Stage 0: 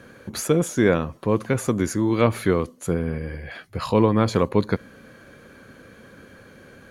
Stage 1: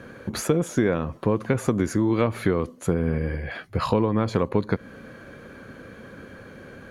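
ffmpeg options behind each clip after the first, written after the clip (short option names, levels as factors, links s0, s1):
-af "highshelf=f=3600:g=-8.5,acompressor=threshold=0.0794:ratio=6,volume=1.68"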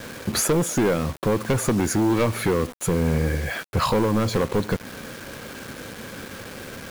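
-af "highshelf=f=5400:g=8,asoftclip=type=hard:threshold=0.1,acrusher=bits=6:mix=0:aa=0.000001,volume=1.68"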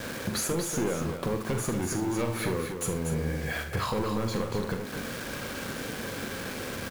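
-filter_complex "[0:a]acompressor=threshold=0.0316:ratio=4,asplit=2[s0][s1];[s1]adelay=43,volume=0.376[s2];[s0][s2]amix=inputs=2:normalize=0,asplit=2[s3][s4];[s4]aecho=0:1:75|239:0.266|0.447[s5];[s3][s5]amix=inputs=2:normalize=0"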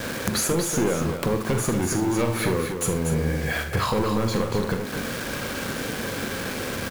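-af "aeval=exprs='(mod(8.41*val(0)+1,2)-1)/8.41':c=same,volume=2"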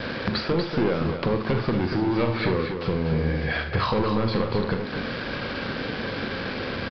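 -af "aresample=11025,aresample=44100"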